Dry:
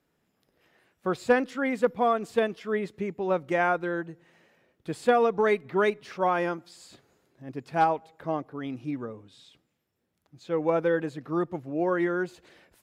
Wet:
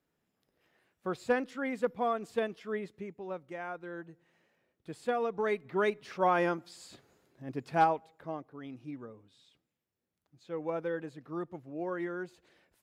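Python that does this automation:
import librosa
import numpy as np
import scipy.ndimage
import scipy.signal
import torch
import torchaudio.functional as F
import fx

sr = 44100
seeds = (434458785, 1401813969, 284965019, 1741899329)

y = fx.gain(x, sr, db=fx.line((2.71, -7.0), (3.61, -16.5), (4.09, -10.0), (5.16, -10.0), (6.41, -1.0), (7.71, -1.0), (8.37, -10.0)))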